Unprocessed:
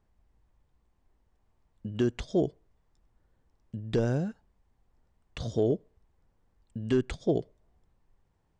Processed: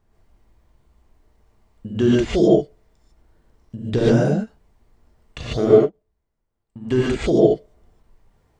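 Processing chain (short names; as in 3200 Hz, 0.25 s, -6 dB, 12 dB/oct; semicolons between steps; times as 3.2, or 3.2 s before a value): 5.41–6.92 power-law curve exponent 1.4; non-linear reverb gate 0.17 s rising, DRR -6.5 dB; ending taper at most 530 dB/s; gain +5 dB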